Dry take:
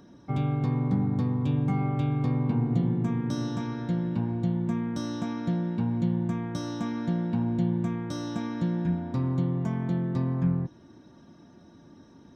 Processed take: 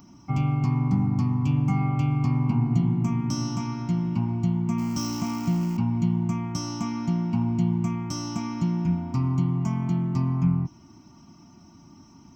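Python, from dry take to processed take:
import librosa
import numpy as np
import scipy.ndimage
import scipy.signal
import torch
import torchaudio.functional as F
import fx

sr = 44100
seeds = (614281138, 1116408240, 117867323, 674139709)

y = fx.zero_step(x, sr, step_db=-39.0, at=(4.78, 5.77))
y = fx.high_shelf(y, sr, hz=4600.0, db=10.5)
y = fx.fixed_phaser(y, sr, hz=2500.0, stages=8)
y = F.gain(torch.from_numpy(y), 4.5).numpy()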